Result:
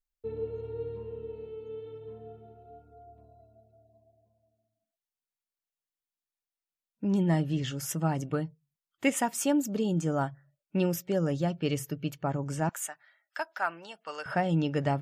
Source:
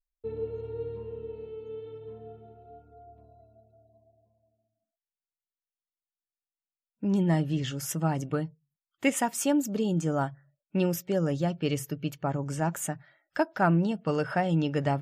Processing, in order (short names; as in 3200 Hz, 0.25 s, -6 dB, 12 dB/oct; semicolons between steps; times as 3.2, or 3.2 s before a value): 12.69–14.26 HPF 990 Hz 12 dB/oct; gain -1 dB